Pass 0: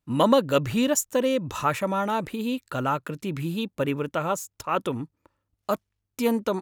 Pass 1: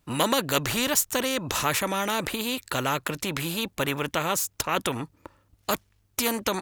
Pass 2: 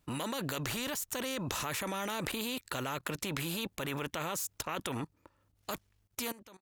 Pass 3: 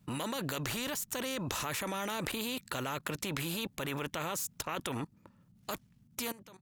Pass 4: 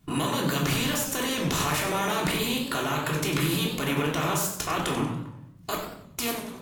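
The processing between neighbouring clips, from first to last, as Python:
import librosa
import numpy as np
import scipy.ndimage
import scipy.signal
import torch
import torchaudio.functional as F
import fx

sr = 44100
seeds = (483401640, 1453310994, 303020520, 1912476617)

y1 = fx.spectral_comp(x, sr, ratio=2.0)
y2 = fx.fade_out_tail(y1, sr, length_s=0.76)
y2 = fx.level_steps(y2, sr, step_db=18)
y3 = fx.dmg_noise_band(y2, sr, seeds[0], low_hz=100.0, high_hz=230.0, level_db=-64.0)
y4 = fx.room_shoebox(y3, sr, seeds[1], volume_m3=740.0, walls='furnished', distance_m=3.3)
y4 = fx.echo_warbled(y4, sr, ms=94, feedback_pct=38, rate_hz=2.8, cents=177, wet_db=-9.5)
y4 = y4 * 10.0 ** (4.5 / 20.0)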